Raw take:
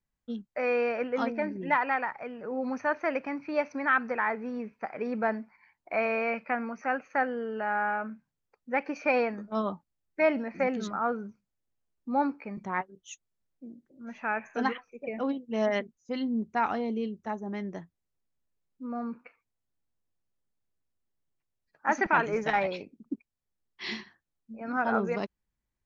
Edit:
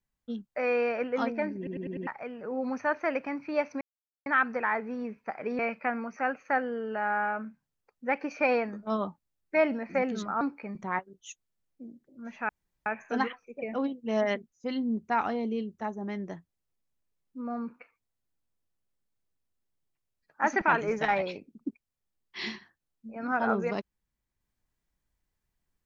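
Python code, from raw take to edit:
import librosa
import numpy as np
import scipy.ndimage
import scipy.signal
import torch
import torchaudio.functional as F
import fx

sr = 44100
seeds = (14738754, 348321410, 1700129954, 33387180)

y = fx.edit(x, sr, fx.stutter_over(start_s=1.57, slice_s=0.1, count=5),
    fx.insert_silence(at_s=3.81, length_s=0.45),
    fx.cut(start_s=5.14, length_s=1.1),
    fx.cut(start_s=11.06, length_s=1.17),
    fx.insert_room_tone(at_s=14.31, length_s=0.37), tone=tone)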